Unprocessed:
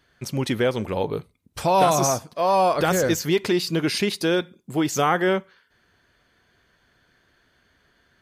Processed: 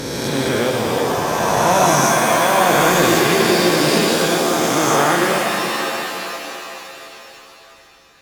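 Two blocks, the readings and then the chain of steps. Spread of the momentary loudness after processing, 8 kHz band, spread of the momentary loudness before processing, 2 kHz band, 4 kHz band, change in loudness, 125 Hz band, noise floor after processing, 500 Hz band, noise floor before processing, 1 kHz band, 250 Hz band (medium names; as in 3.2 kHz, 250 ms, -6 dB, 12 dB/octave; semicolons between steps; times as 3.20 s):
13 LU, +9.5 dB, 9 LU, +11.0 dB, +9.5 dB, +6.5 dB, +4.5 dB, -46 dBFS, +6.0 dB, -65 dBFS, +7.0 dB, +6.0 dB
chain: reverse spectral sustain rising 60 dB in 2.90 s; pitch-shifted reverb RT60 3.2 s, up +7 st, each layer -2 dB, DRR 1 dB; trim -2.5 dB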